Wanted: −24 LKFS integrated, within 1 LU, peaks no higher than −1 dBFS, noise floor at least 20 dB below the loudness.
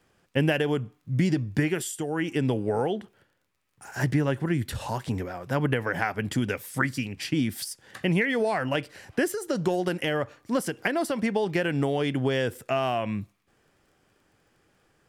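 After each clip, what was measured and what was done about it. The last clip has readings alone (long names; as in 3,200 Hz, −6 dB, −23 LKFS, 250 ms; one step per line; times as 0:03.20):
crackle rate 17 per second; integrated loudness −27.5 LKFS; sample peak −8.0 dBFS; target loudness −24.0 LKFS
→ click removal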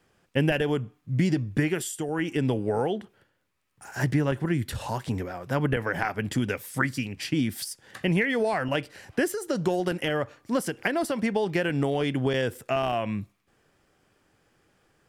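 crackle rate 0.066 per second; integrated loudness −27.5 LKFS; sample peak −8.0 dBFS; target loudness −24.0 LKFS
→ level +3.5 dB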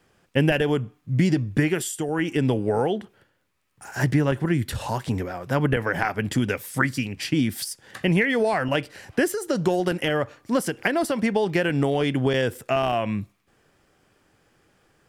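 integrated loudness −24.0 LKFS; sample peak −4.5 dBFS; background noise floor −67 dBFS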